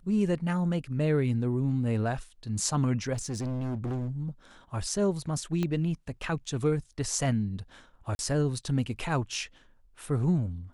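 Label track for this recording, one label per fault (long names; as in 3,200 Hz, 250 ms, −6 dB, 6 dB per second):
3.130000	4.090000	clipping −29 dBFS
5.630000	5.630000	click −18 dBFS
8.150000	8.190000	drop-out 41 ms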